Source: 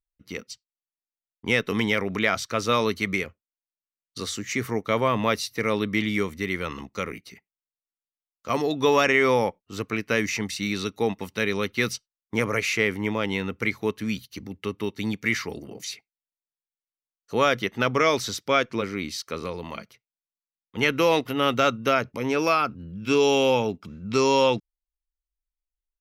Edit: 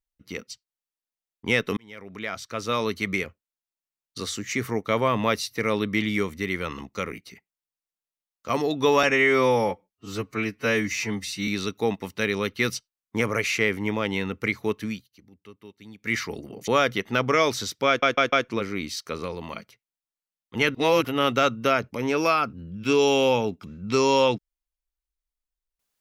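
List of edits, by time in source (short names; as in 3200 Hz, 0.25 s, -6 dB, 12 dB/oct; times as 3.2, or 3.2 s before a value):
1.77–3.22 fade in linear
9.03–10.66 stretch 1.5×
14.03–15.34 dip -17 dB, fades 0.18 s
15.86–17.34 cut
18.54 stutter 0.15 s, 4 plays
20.96–21.26 reverse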